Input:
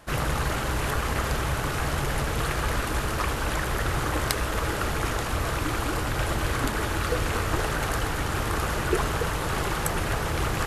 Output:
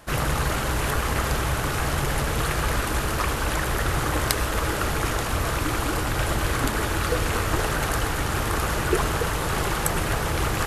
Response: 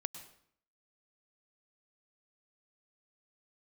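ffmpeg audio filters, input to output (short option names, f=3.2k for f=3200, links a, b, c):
-filter_complex "[0:a]asplit=2[a][b];[1:a]atrim=start_sample=2205,highshelf=f=6.2k:g=7.5[c];[b][c]afir=irnorm=-1:irlink=0,volume=-3dB[d];[a][d]amix=inputs=2:normalize=0,volume=-2dB"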